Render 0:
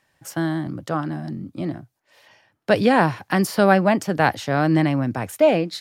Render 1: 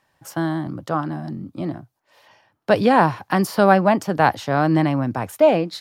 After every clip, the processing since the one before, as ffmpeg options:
-af "equalizer=f=1k:t=o:w=1:g=5,equalizer=f=2k:t=o:w=1:g=-3,equalizer=f=8k:t=o:w=1:g=-3"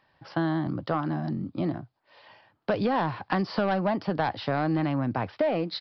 -af "aresample=11025,asoftclip=type=tanh:threshold=-10.5dB,aresample=44100,acompressor=threshold=-23dB:ratio=6"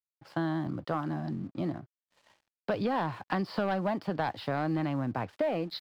-af "aeval=exprs='sgn(val(0))*max(abs(val(0))-0.00224,0)':c=same,volume=-4dB"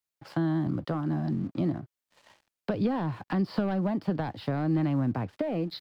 -filter_complex "[0:a]acrossover=split=370[a][b];[b]acompressor=threshold=-49dB:ratio=2[c];[a][c]amix=inputs=2:normalize=0,volume=6dB"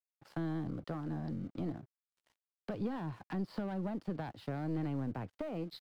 -af "aeval=exprs='(tanh(11.2*val(0)+0.45)-tanh(0.45))/11.2':c=same,aeval=exprs='sgn(val(0))*max(abs(val(0))-0.00168,0)':c=same,volume=-7dB"

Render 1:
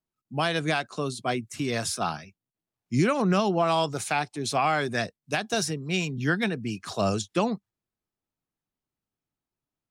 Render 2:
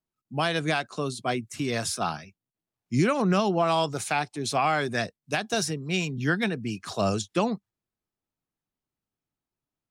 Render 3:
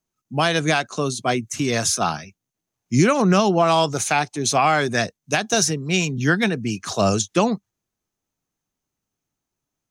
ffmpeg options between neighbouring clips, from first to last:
-af anull
-af "equalizer=f=6.3k:w=6.7:g=12,volume=6.5dB"

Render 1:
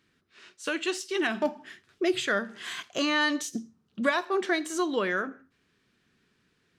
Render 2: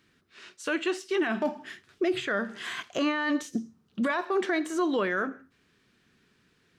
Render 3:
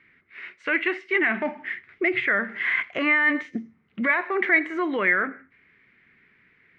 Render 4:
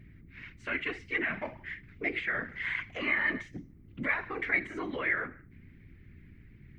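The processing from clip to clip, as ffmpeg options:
-filter_complex "[0:a]acrossover=split=2500[a][b];[b]acompressor=threshold=-46dB:ratio=6[c];[a][c]amix=inputs=2:normalize=0,alimiter=limit=-22.5dB:level=0:latency=1:release=13,volume=3.5dB"
-af "lowpass=f=2.1k:t=q:w=11"
-af "aeval=exprs='val(0)+0.01*(sin(2*PI*60*n/s)+sin(2*PI*2*60*n/s)/2+sin(2*PI*3*60*n/s)/3+sin(2*PI*4*60*n/s)/4+sin(2*PI*5*60*n/s)/5)':c=same,aemphasis=mode=production:type=75fm,afftfilt=real='hypot(re,im)*cos(2*PI*random(0))':imag='hypot(re,im)*sin(2*PI*random(1))':win_size=512:overlap=0.75,volume=-4.5dB"

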